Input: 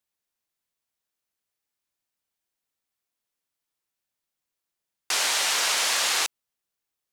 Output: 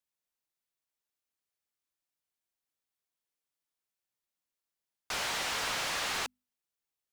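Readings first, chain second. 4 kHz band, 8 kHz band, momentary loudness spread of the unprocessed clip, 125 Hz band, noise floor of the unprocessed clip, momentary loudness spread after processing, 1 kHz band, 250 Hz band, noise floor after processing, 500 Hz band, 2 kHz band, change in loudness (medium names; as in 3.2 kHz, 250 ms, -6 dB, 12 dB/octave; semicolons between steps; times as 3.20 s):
-10.5 dB, -13.5 dB, 5 LU, no reading, under -85 dBFS, 5 LU, -6.0 dB, 0.0 dB, under -85 dBFS, -5.0 dB, -8.0 dB, -10.0 dB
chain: hum notches 50/100/150/200/250 Hz; slew-rate limiter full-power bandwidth 170 Hz; trim -6 dB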